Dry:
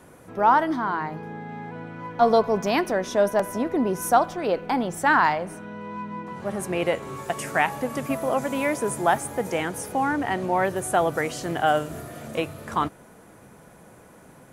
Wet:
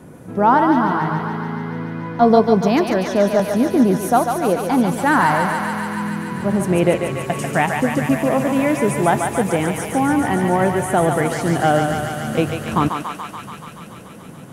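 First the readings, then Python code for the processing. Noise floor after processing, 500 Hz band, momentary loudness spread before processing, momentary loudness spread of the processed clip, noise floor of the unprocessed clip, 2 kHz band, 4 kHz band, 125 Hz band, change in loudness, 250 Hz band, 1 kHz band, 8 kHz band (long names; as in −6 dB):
−38 dBFS, +6.0 dB, 15 LU, 11 LU, −50 dBFS, +4.5 dB, +4.5 dB, +13.0 dB, +6.0 dB, +11.0 dB, +4.5 dB, +4.5 dB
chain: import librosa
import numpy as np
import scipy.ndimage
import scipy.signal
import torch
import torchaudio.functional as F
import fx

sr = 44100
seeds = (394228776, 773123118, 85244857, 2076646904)

p1 = fx.peak_eq(x, sr, hz=170.0, db=12.5, octaves=2.5)
p2 = fx.echo_thinned(p1, sr, ms=143, feedback_pct=85, hz=630.0, wet_db=-4.0)
p3 = fx.rider(p2, sr, range_db=4, speed_s=2.0)
p4 = p2 + (p3 * 10.0 ** (-1.0 / 20.0))
y = p4 * 10.0 ** (-5.0 / 20.0)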